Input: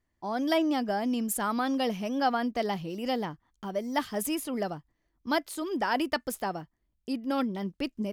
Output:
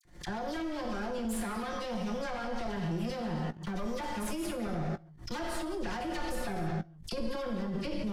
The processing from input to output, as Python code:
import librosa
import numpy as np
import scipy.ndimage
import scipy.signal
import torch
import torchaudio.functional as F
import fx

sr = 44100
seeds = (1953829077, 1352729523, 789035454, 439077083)

y = fx.lower_of_two(x, sr, delay_ms=5.6)
y = scipy.signal.sosfilt(scipy.signal.butter(2, 11000.0, 'lowpass', fs=sr, output='sos'), y)
y = fx.peak_eq(y, sr, hz=2700.0, db=-2.5, octaves=0.38)
y = fx.rev_gated(y, sr, seeds[0], gate_ms=340, shape='falling', drr_db=2.0)
y = 10.0 ** (-24.5 / 20.0) * np.tanh(y / 10.0 ** (-24.5 / 20.0))
y = fx.dispersion(y, sr, late='lows', ms=45.0, hz=1800.0)
y = fx.level_steps(y, sr, step_db=22)
y = fx.low_shelf(y, sr, hz=220.0, db=9.5)
y = fx.doubler(y, sr, ms=18.0, db=-12.0)
y = fx.pre_swell(y, sr, db_per_s=130.0)
y = F.gain(torch.from_numpy(y), 6.0).numpy()